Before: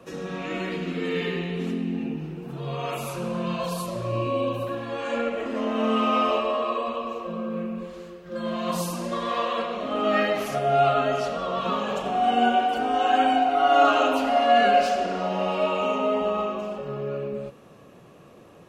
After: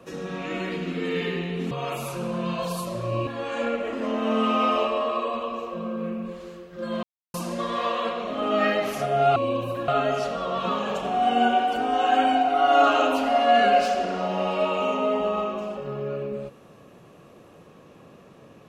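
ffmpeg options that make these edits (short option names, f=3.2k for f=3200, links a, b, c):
-filter_complex "[0:a]asplit=7[a][b][c][d][e][f][g];[a]atrim=end=1.712[h];[b]atrim=start=2.718:end=4.282[i];[c]atrim=start=4.798:end=8.56,asetpts=PTS-STARTPTS,afade=t=out:st=3.758:d=0.004:c=hsin[j];[d]atrim=start=8.56:end=8.87,asetpts=PTS-STARTPTS,volume=0[k];[e]atrim=start=8.87:end=10.892,asetpts=PTS-STARTPTS,afade=t=in:d=0.004:c=hsin[l];[f]atrim=start=4.278:end=4.802[m];[g]atrim=start=10.888[n];[h][i]acrossfade=d=0.004:c1=hsin:c2=hsin[o];[j][k][l]concat=n=3:v=0:a=1[p];[o][p]acrossfade=d=0.004:c1=hsin:c2=hsin[q];[q][m]acrossfade=d=0.004:c1=hsin:c2=hsin[r];[r][n]acrossfade=d=0.004:c1=hsin:c2=hsin"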